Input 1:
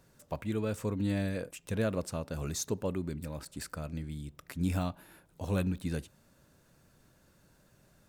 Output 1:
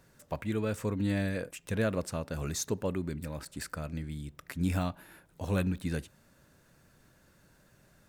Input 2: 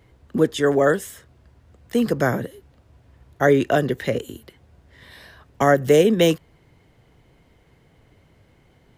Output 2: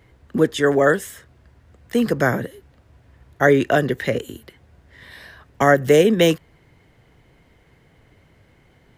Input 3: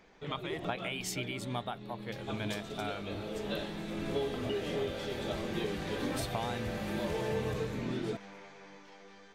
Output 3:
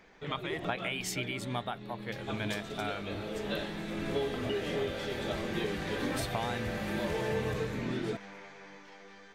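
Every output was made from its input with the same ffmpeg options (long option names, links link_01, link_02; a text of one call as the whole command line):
ffmpeg -i in.wav -af "equalizer=frequency=1800:width_type=o:width=0.83:gain=4,volume=1dB" out.wav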